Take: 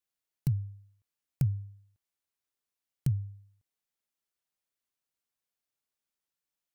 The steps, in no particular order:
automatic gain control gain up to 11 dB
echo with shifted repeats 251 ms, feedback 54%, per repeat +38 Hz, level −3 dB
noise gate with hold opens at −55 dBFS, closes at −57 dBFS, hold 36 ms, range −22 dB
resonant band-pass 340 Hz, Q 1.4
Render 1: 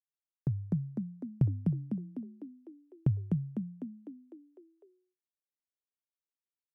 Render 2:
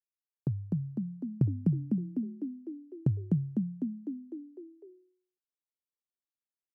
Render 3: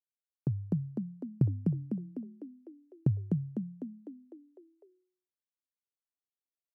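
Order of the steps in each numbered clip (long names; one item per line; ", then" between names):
resonant band-pass, then noise gate with hold, then echo with shifted repeats, then automatic gain control
automatic gain control, then noise gate with hold, then echo with shifted repeats, then resonant band-pass
noise gate with hold, then resonant band-pass, then echo with shifted repeats, then automatic gain control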